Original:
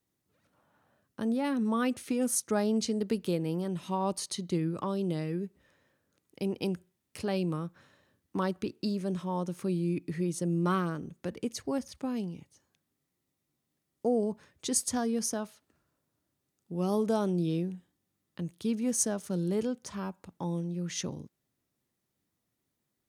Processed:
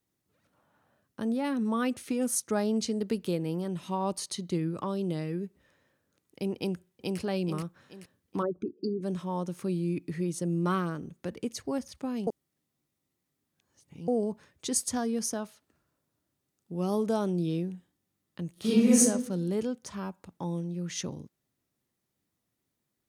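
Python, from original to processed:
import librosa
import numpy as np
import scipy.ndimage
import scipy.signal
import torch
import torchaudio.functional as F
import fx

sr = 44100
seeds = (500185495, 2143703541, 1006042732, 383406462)

y = fx.echo_throw(x, sr, start_s=6.56, length_s=0.63, ms=430, feedback_pct=40, wet_db=-1.0)
y = fx.envelope_sharpen(y, sr, power=3.0, at=(8.41, 9.02), fade=0.02)
y = fx.reverb_throw(y, sr, start_s=18.52, length_s=0.47, rt60_s=0.86, drr_db=-11.0)
y = fx.edit(y, sr, fx.reverse_span(start_s=12.27, length_s=1.81), tone=tone)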